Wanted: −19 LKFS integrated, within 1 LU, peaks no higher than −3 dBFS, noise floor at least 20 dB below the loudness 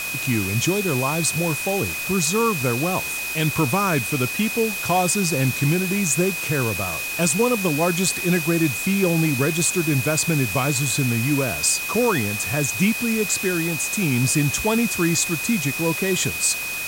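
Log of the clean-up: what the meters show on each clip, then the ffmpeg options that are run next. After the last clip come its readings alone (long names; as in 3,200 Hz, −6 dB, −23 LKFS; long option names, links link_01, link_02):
interfering tone 2,500 Hz; level of the tone −27 dBFS; background noise floor −28 dBFS; target noise floor −41 dBFS; integrated loudness −20.5 LKFS; sample peak −7.0 dBFS; target loudness −19.0 LKFS
→ -af "bandreject=frequency=2500:width=30"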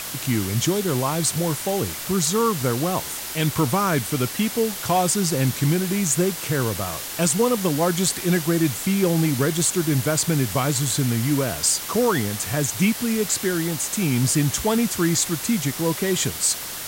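interfering tone none found; background noise floor −32 dBFS; target noise floor −42 dBFS
→ -af "afftdn=noise_reduction=10:noise_floor=-32"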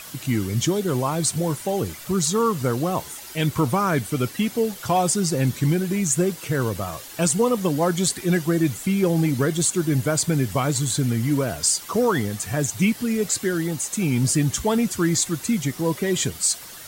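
background noise floor −40 dBFS; target noise floor −43 dBFS
→ -af "afftdn=noise_reduction=6:noise_floor=-40"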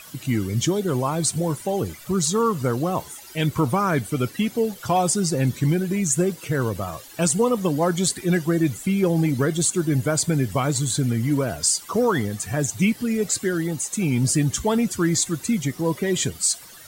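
background noise floor −43 dBFS; integrated loudness −22.5 LKFS; sample peak −8.5 dBFS; target loudness −19.0 LKFS
→ -af "volume=3.5dB"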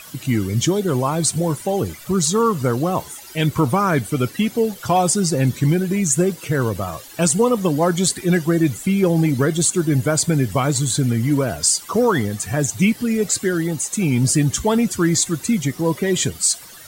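integrated loudness −19.0 LKFS; sample peak −5.0 dBFS; background noise floor −40 dBFS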